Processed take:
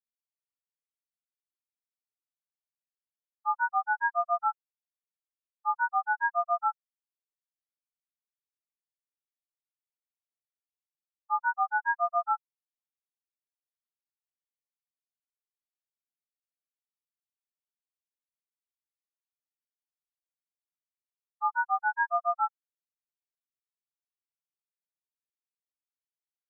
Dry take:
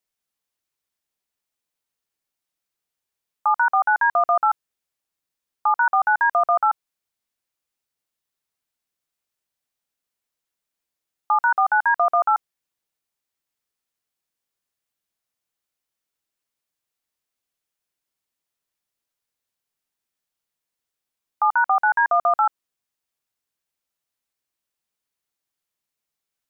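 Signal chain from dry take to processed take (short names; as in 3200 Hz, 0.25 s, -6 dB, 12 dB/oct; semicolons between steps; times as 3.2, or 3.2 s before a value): spectral expander 4:1; gain -6.5 dB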